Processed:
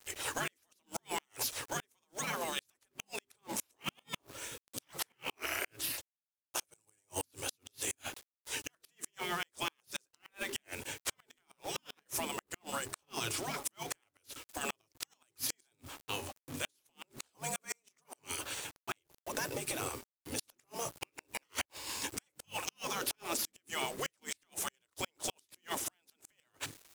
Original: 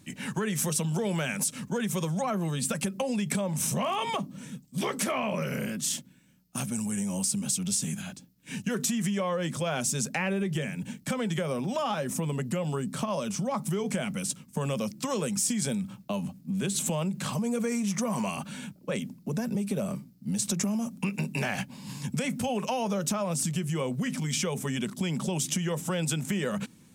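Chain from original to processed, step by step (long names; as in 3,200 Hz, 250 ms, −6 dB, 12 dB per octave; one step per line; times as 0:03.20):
mains-hum notches 50/100/150/200/250/300/350/400 Hz
gate on every frequency bin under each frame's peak −15 dB weak
log-companded quantiser 4 bits
pitch vibrato 5.4 Hz 5.9 cents
gate with flip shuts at −25 dBFS, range −42 dB
level +5 dB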